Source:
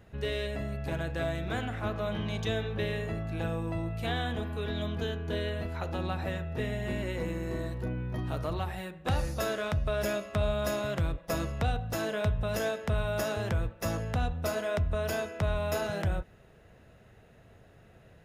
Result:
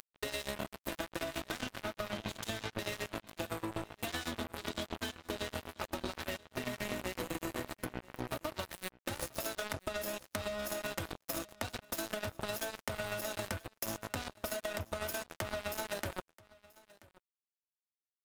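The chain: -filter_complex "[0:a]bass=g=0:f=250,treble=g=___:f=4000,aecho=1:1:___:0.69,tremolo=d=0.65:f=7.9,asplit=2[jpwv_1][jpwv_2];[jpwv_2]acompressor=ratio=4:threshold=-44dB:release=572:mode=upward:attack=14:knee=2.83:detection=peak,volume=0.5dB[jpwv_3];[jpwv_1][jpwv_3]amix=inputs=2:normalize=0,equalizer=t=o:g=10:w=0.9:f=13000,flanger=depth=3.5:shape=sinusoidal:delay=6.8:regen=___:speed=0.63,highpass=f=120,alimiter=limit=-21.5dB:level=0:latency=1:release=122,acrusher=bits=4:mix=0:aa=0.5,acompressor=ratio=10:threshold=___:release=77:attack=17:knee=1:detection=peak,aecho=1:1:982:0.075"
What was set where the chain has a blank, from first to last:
4, 3.3, 61, -38dB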